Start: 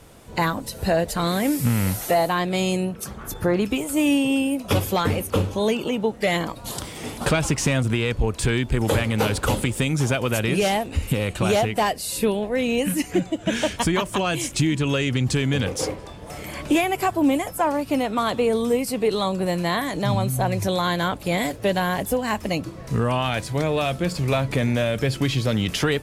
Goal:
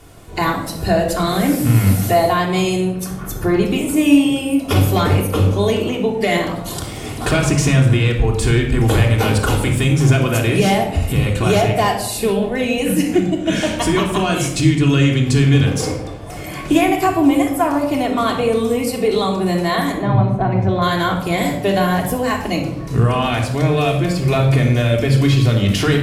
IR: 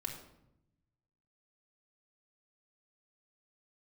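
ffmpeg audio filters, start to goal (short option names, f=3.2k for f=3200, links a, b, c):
-filter_complex "[0:a]asettb=1/sr,asplit=3[a][b][c];[a]atrim=end=19.924[d];[b]atrim=start=19.92:end=20.82,asetpts=PTS-STARTPTS,afade=t=in:d=0.004:c=qsin,afade=t=out:st=0.896:d=0.004:c=qsin,lowpass=1.8k[e];[c]atrim=start=20.816[f];[d][e]acrossfade=d=0.004:c1=hsin:c2=qsin[g];[g][f]acrossfade=d=0.004:c1=qsin:c2=hsin[h];[1:a]atrim=start_sample=2205[i];[h][i]afir=irnorm=-1:irlink=0,volume=5dB"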